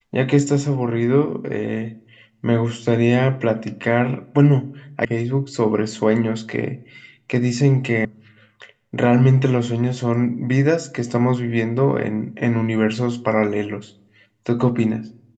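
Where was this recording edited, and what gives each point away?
5.05 sound cut off
8.05 sound cut off

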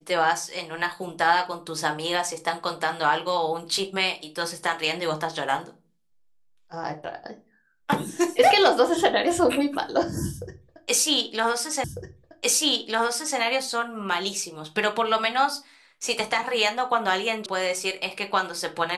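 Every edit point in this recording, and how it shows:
11.84 repeat of the last 1.55 s
17.46 sound cut off

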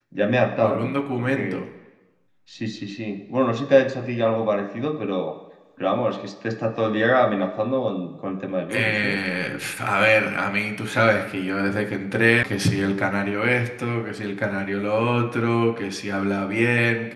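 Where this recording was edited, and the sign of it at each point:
12.43 sound cut off

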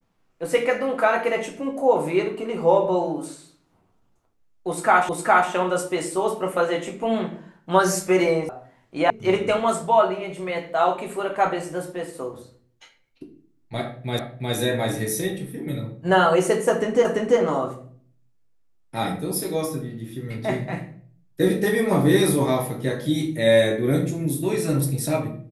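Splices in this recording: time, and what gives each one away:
5.09 repeat of the last 0.41 s
8.49 sound cut off
9.1 sound cut off
14.19 repeat of the last 0.36 s
17.05 repeat of the last 0.34 s

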